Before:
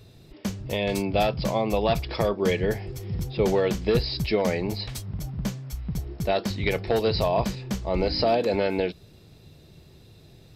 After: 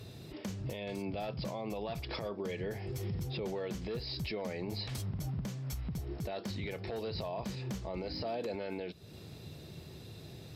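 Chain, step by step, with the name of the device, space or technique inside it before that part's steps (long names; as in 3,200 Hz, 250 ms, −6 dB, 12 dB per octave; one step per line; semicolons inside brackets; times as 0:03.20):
podcast mastering chain (high-pass filter 74 Hz 12 dB per octave; de-essing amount 80%; downward compressor 3 to 1, threshold −38 dBFS, peak gain reduction 15 dB; brickwall limiter −32.5 dBFS, peak gain reduction 10.5 dB; level +3.5 dB; MP3 96 kbit/s 44,100 Hz)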